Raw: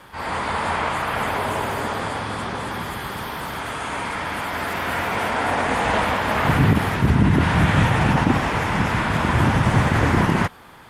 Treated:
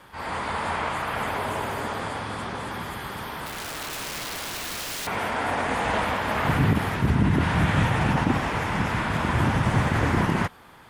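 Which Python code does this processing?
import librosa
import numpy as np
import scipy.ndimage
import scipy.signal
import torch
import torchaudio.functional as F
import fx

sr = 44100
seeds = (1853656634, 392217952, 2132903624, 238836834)

y = fx.overflow_wrap(x, sr, gain_db=23.0, at=(3.46, 5.07))
y = y * 10.0 ** (-4.5 / 20.0)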